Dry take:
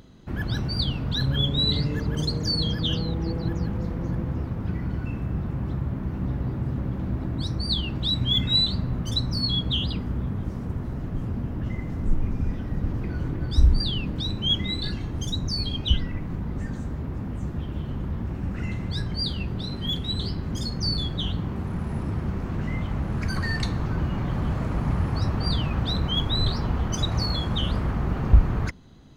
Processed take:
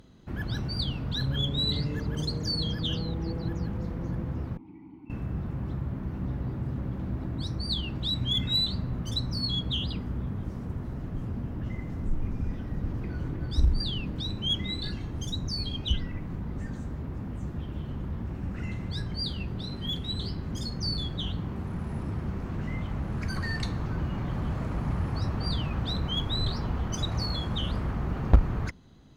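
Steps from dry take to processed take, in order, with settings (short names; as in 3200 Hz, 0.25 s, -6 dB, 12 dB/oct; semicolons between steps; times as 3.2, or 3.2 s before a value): 4.57–5.1 vowel filter u; added harmonics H 3 -10 dB, 5 -19 dB, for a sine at -4.5 dBFS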